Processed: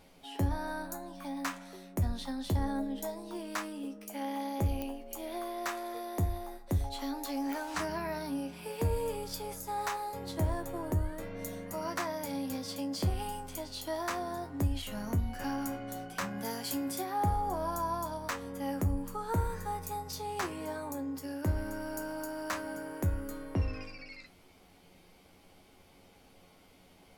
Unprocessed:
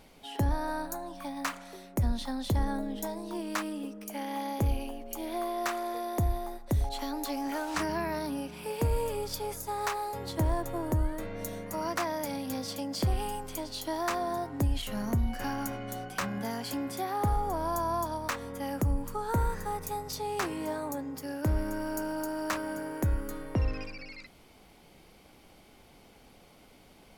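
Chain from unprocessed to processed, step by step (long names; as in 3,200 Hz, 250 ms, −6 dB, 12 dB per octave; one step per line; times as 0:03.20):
0:16.38–0:17.01: high-shelf EQ 4,500 Hz +8.5 dB
tuned comb filter 91 Hz, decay 0.18 s, harmonics all, mix 80%
digital clicks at 0:04.82/0:07.53, −25 dBFS
level +2.5 dB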